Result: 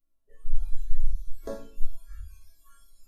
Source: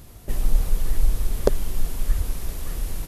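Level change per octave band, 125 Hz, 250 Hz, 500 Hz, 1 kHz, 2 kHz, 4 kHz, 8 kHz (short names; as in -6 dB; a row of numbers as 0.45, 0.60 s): -10.0, -13.5, -13.5, -14.5, -17.5, -20.5, -21.5 dB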